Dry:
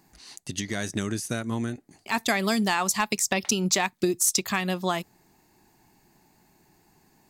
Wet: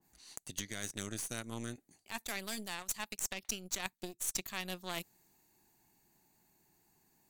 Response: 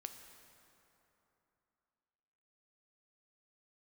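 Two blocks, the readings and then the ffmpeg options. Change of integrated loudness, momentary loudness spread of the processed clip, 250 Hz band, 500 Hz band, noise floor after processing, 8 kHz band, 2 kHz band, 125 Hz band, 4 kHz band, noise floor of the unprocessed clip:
−14.0 dB, 9 LU, −18.0 dB, −17.5 dB, −76 dBFS, −12.0 dB, −14.0 dB, −16.0 dB, −12.0 dB, −63 dBFS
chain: -af "aemphasis=mode=production:type=cd,aeval=exprs='0.631*(cos(1*acos(clip(val(0)/0.631,-1,1)))-cos(1*PI/2))+0.126*(cos(3*acos(clip(val(0)/0.631,-1,1)))-cos(3*PI/2))+0.0282*(cos(5*acos(clip(val(0)/0.631,-1,1)))-cos(5*PI/2))+0.0398*(cos(6*acos(clip(val(0)/0.631,-1,1)))-cos(6*PI/2))+0.0316*(cos(7*acos(clip(val(0)/0.631,-1,1)))-cos(7*PI/2))':channel_layout=same,areverse,acompressor=threshold=-34dB:ratio=12,areverse,bandreject=frequency=5100:width=9.8,adynamicequalizer=threshold=0.00158:dfrequency=1900:dqfactor=0.7:tfrequency=1900:tqfactor=0.7:attack=5:release=100:ratio=0.375:range=1.5:mode=boostabove:tftype=highshelf,volume=-1.5dB"

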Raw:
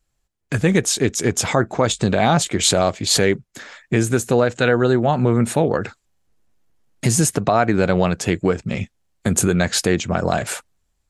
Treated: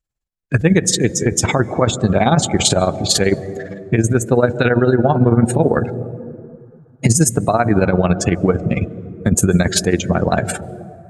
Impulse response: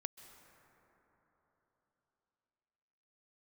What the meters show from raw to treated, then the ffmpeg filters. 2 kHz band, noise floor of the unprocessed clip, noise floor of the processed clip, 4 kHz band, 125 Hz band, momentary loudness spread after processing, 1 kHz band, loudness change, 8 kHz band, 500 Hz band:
+1.0 dB, −71 dBFS, −49 dBFS, +1.0 dB, +4.5 dB, 11 LU, +1.5 dB, +2.5 dB, +2.0 dB, +2.0 dB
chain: -filter_complex "[0:a]lowshelf=frequency=220:gain=3.5,tremolo=f=18:d=0.76,asplit=2[link_01][link_02];[1:a]atrim=start_sample=2205[link_03];[link_02][link_03]afir=irnorm=-1:irlink=0,volume=9dB[link_04];[link_01][link_04]amix=inputs=2:normalize=0,afftdn=noise_reduction=17:noise_floor=-23,alimiter=level_in=-1dB:limit=-1dB:release=50:level=0:latency=1,volume=-1dB"

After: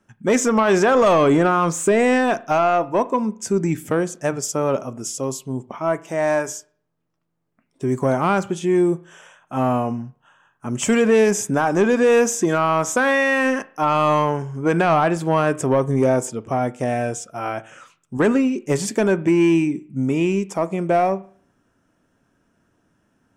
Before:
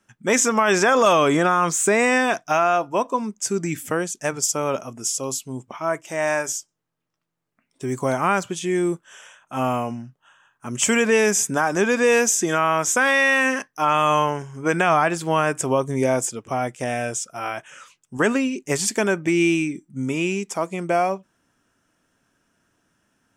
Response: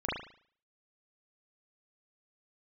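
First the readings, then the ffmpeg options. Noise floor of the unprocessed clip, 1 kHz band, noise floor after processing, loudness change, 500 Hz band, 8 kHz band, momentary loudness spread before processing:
−75 dBFS, +0.5 dB, −68 dBFS, +1.5 dB, +3.0 dB, −5.0 dB, 11 LU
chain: -filter_complex "[0:a]tiltshelf=frequency=1300:gain=5.5,asoftclip=type=tanh:threshold=-8.5dB,asplit=2[link_01][link_02];[1:a]atrim=start_sample=2205[link_03];[link_02][link_03]afir=irnorm=-1:irlink=0,volume=-24dB[link_04];[link_01][link_04]amix=inputs=2:normalize=0"

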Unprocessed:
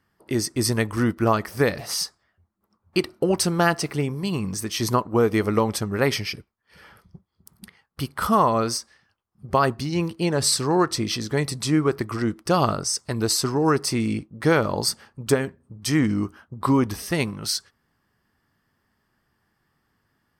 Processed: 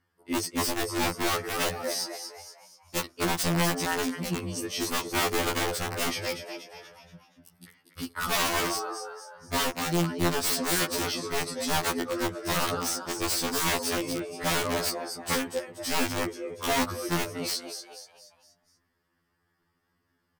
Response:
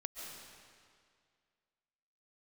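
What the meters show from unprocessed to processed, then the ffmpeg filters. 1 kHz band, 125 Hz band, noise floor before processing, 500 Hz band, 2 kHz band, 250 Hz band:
−5.0 dB, −10.0 dB, −72 dBFS, −7.5 dB, −1.0 dB, −8.5 dB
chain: -filter_complex "[0:a]asplit=6[link_01][link_02][link_03][link_04][link_05][link_06];[link_02]adelay=239,afreqshift=100,volume=-8.5dB[link_07];[link_03]adelay=478,afreqshift=200,volume=-15.6dB[link_08];[link_04]adelay=717,afreqshift=300,volume=-22.8dB[link_09];[link_05]adelay=956,afreqshift=400,volume=-29.9dB[link_10];[link_06]adelay=1195,afreqshift=500,volume=-37dB[link_11];[link_01][link_07][link_08][link_09][link_10][link_11]amix=inputs=6:normalize=0,aeval=exprs='(mod(5.62*val(0)+1,2)-1)/5.62':channel_layout=same,afftfilt=real='re*2*eq(mod(b,4),0)':imag='im*2*eq(mod(b,4),0)':win_size=2048:overlap=0.75,volume=-3dB"

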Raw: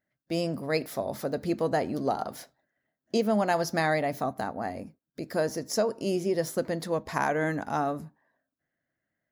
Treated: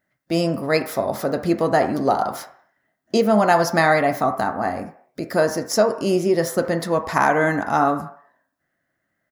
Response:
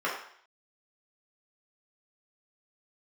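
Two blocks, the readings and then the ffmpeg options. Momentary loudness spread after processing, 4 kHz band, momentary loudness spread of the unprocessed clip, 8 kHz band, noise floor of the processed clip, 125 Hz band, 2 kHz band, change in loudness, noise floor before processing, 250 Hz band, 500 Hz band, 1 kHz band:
9 LU, +7.5 dB, 10 LU, +7.5 dB, −75 dBFS, +7.5 dB, +10.0 dB, +9.0 dB, −85 dBFS, +8.5 dB, +8.5 dB, +10.5 dB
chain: -filter_complex "[0:a]asplit=2[link_01][link_02];[link_02]firequalizer=gain_entry='entry(450,0);entry(1000,8);entry(3700,-4)':delay=0.05:min_phase=1[link_03];[1:a]atrim=start_sample=2205[link_04];[link_03][link_04]afir=irnorm=-1:irlink=0,volume=-18dB[link_05];[link_01][link_05]amix=inputs=2:normalize=0,volume=7.5dB"

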